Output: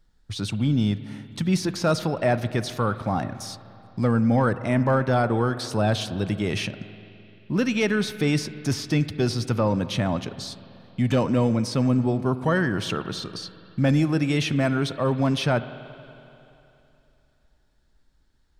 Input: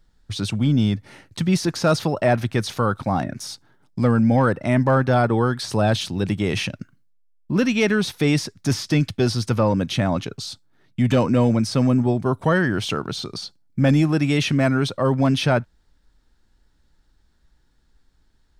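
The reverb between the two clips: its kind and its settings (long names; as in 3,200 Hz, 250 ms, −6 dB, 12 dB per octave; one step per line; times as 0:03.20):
spring reverb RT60 3 s, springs 43/47 ms, chirp 30 ms, DRR 13 dB
level −3.5 dB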